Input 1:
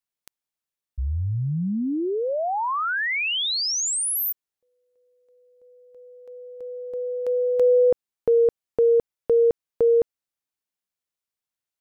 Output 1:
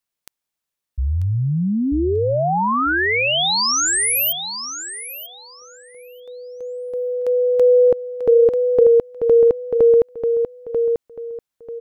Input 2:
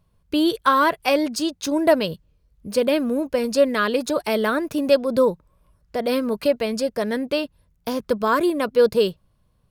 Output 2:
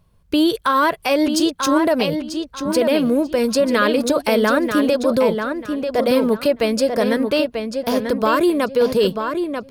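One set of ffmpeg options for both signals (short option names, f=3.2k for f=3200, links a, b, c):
-filter_complex "[0:a]alimiter=limit=-14dB:level=0:latency=1:release=67,asplit=2[a][b];[b]adelay=940,lowpass=f=4.4k:p=1,volume=-6dB,asplit=2[c][d];[d]adelay=940,lowpass=f=4.4k:p=1,volume=0.26,asplit=2[e][f];[f]adelay=940,lowpass=f=4.4k:p=1,volume=0.26[g];[c][e][g]amix=inputs=3:normalize=0[h];[a][h]amix=inputs=2:normalize=0,volume=5.5dB"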